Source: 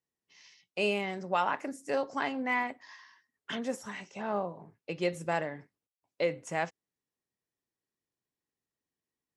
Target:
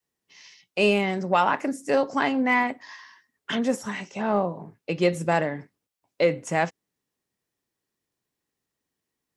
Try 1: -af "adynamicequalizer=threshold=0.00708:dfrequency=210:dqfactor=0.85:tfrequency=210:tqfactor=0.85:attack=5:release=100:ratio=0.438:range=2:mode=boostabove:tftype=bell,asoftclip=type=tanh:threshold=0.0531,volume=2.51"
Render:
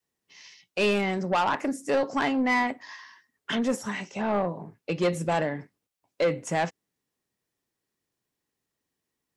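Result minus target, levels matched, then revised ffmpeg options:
saturation: distortion +17 dB
-af "adynamicequalizer=threshold=0.00708:dfrequency=210:dqfactor=0.85:tfrequency=210:tqfactor=0.85:attack=5:release=100:ratio=0.438:range=2:mode=boostabove:tftype=bell,asoftclip=type=tanh:threshold=0.211,volume=2.51"

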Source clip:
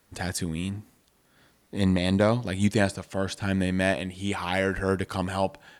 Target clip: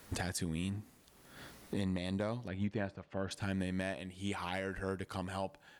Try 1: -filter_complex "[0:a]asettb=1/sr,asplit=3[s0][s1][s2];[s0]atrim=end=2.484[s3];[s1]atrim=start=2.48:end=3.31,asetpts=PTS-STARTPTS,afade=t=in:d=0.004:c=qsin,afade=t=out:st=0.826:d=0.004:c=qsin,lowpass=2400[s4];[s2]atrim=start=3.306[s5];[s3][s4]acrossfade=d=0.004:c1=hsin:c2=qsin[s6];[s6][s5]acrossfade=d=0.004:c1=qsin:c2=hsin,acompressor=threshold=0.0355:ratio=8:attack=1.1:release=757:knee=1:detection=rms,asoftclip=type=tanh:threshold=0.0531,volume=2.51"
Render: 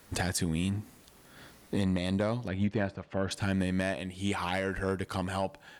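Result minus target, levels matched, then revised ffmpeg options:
compression: peak gain reduction -7.5 dB
-filter_complex "[0:a]asettb=1/sr,asplit=3[s0][s1][s2];[s0]atrim=end=2.484[s3];[s1]atrim=start=2.48:end=3.31,asetpts=PTS-STARTPTS,afade=t=in:d=0.004:c=qsin,afade=t=out:st=0.826:d=0.004:c=qsin,lowpass=2400[s4];[s2]atrim=start=3.306[s5];[s3][s4]acrossfade=d=0.004:c1=hsin:c2=qsin[s6];[s6][s5]acrossfade=d=0.004:c1=qsin:c2=hsin,acompressor=threshold=0.0133:ratio=8:attack=1.1:release=757:knee=1:detection=rms,asoftclip=type=tanh:threshold=0.0531,volume=2.51"

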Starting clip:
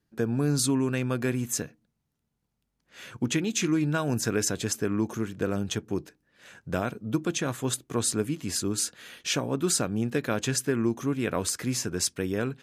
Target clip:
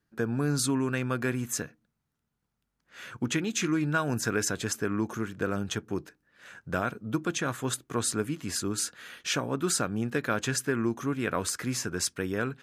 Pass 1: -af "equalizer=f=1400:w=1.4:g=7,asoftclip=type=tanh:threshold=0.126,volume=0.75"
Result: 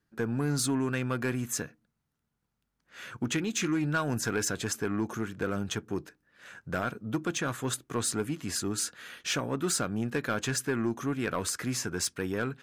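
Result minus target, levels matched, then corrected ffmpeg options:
saturation: distortion +19 dB
-af "equalizer=f=1400:w=1.4:g=7,asoftclip=type=tanh:threshold=0.501,volume=0.75"

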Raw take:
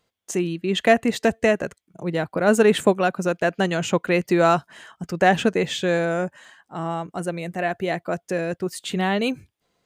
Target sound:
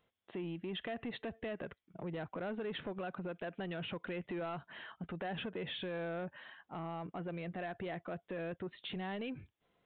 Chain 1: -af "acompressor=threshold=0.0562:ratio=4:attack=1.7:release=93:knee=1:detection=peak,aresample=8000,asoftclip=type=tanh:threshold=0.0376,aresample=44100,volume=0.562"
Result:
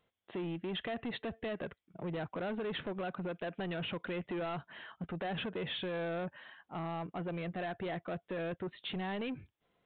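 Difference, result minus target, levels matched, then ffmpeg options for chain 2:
compression: peak gain reduction -5.5 dB
-af "acompressor=threshold=0.0251:ratio=4:attack=1.7:release=93:knee=1:detection=peak,aresample=8000,asoftclip=type=tanh:threshold=0.0376,aresample=44100,volume=0.562"

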